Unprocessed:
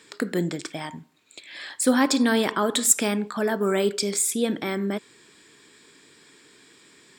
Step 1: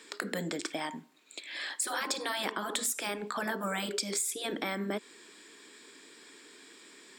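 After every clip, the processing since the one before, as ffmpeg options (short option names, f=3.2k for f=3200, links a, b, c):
-af "highpass=f=220:w=0.5412,highpass=f=220:w=1.3066,afftfilt=real='re*lt(hypot(re,im),0.316)':imag='im*lt(hypot(re,im),0.316)':win_size=1024:overlap=0.75,acompressor=threshold=-30dB:ratio=5"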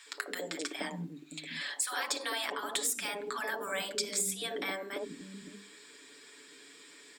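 -filter_complex "[0:a]bandreject=f=50:t=h:w=6,bandreject=f=100:t=h:w=6,bandreject=f=150:t=h:w=6,bandreject=f=200:t=h:w=6,bandreject=f=250:t=h:w=6,bandreject=f=300:t=h:w=6,bandreject=f=350:t=h:w=6,bandreject=f=400:t=h:w=6,aecho=1:1:7:0.55,acrossover=split=260|850[a][b][c];[b]adelay=60[d];[a]adelay=570[e];[e][d][c]amix=inputs=3:normalize=0,volume=-1dB"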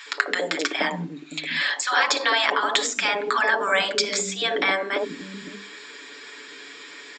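-af "equalizer=f=1.4k:w=0.32:g=9,aresample=16000,aresample=44100,volume=7dB"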